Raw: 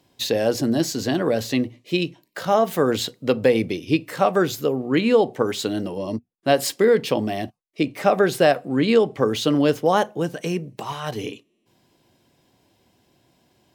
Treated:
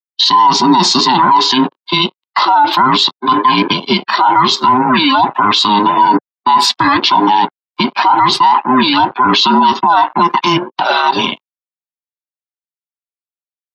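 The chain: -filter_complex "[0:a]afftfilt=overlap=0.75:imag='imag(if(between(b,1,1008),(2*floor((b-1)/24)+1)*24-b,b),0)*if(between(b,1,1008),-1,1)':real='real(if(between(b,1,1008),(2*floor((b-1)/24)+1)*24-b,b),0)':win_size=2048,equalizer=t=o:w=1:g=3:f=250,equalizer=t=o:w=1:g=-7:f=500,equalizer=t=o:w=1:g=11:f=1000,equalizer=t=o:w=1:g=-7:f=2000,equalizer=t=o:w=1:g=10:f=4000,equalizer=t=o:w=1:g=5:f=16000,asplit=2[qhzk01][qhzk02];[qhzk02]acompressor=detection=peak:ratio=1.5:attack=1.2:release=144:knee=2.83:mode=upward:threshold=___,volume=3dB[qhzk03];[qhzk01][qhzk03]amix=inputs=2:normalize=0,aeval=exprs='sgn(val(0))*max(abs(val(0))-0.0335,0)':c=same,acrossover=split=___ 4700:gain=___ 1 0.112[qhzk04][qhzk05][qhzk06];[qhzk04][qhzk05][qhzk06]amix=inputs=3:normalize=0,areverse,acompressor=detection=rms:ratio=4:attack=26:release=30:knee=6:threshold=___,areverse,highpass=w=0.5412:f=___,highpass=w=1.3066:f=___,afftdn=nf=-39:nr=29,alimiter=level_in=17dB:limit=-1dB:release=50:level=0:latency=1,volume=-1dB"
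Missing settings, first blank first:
-29dB, 400, 0.251, -19dB, 150, 150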